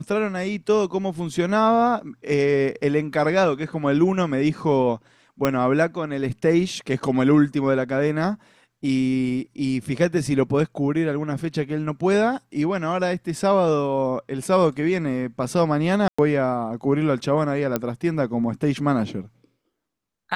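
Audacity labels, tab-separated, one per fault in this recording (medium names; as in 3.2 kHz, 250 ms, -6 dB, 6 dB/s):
5.450000	5.450000	pop -6 dBFS
16.080000	16.180000	dropout 105 ms
17.760000	17.760000	pop -8 dBFS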